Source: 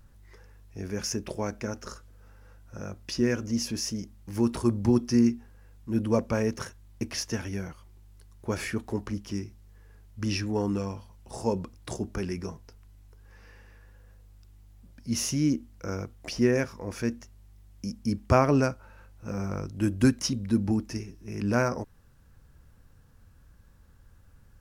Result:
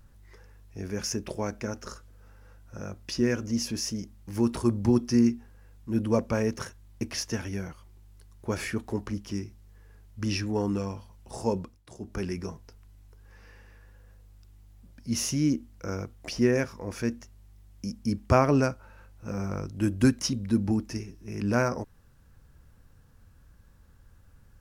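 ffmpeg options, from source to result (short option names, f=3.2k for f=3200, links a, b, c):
-filter_complex "[0:a]asplit=3[a][b][c];[a]atrim=end=11.83,asetpts=PTS-STARTPTS,afade=t=out:st=11.56:d=0.27:silence=0.211349[d];[b]atrim=start=11.83:end=11.94,asetpts=PTS-STARTPTS,volume=-13.5dB[e];[c]atrim=start=11.94,asetpts=PTS-STARTPTS,afade=t=in:d=0.27:silence=0.211349[f];[d][e][f]concat=n=3:v=0:a=1"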